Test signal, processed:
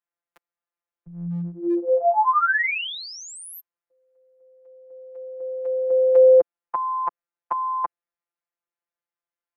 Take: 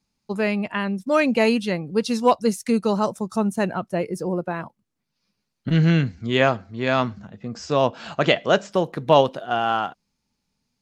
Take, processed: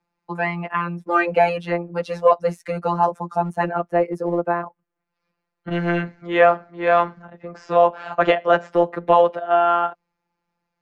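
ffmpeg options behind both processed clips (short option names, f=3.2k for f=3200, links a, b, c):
-filter_complex "[0:a]afftfilt=real='hypot(re,im)*cos(PI*b)':imag='0':win_size=1024:overlap=0.75,acrossover=split=370 2100:gain=0.224 1 0.0794[a][b][c];[a][b][c]amix=inputs=3:normalize=0,acrossover=split=320|990[d][e][f];[d]asoftclip=type=hard:threshold=-35dB[g];[g][e][f]amix=inputs=3:normalize=0,alimiter=level_in=13.5dB:limit=-1dB:release=50:level=0:latency=1,volume=-3.5dB"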